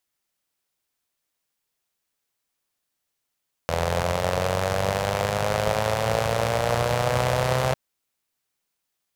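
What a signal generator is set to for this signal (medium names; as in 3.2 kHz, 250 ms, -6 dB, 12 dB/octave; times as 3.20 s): four-cylinder engine model, changing speed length 4.05 s, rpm 2500, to 3900, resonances 84/130/540 Hz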